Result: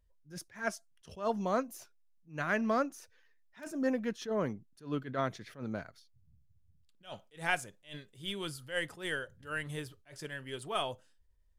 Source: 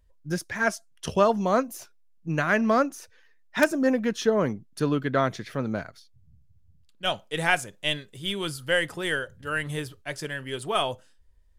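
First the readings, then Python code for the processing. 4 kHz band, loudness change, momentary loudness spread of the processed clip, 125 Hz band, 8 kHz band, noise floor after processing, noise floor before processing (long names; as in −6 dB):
−11.5 dB, −9.5 dB, 17 LU, −11.0 dB, −10.0 dB, −66 dBFS, −57 dBFS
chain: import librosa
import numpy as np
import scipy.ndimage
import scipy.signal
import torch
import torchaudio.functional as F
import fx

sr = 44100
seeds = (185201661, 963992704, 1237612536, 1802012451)

y = fx.attack_slew(x, sr, db_per_s=190.0)
y = y * 10.0 ** (-8.5 / 20.0)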